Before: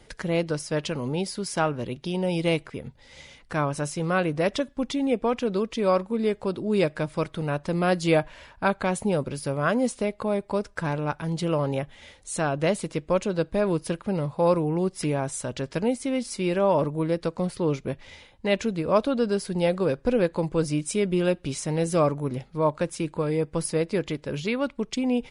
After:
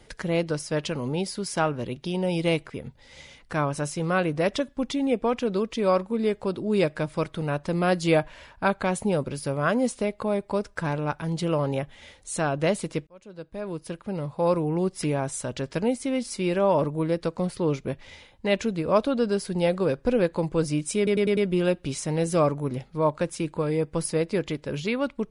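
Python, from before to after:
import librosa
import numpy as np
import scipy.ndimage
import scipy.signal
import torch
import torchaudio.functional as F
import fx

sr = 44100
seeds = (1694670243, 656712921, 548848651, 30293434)

y = fx.edit(x, sr, fx.fade_in_span(start_s=13.07, length_s=1.72),
    fx.stutter(start_s=20.97, slice_s=0.1, count=5), tone=tone)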